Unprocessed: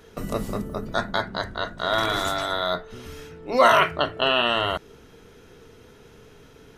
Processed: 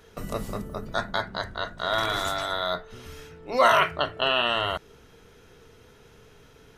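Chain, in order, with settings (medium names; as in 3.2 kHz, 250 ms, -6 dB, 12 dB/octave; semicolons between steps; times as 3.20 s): peaking EQ 280 Hz -4.5 dB 1.4 oct; trim -2 dB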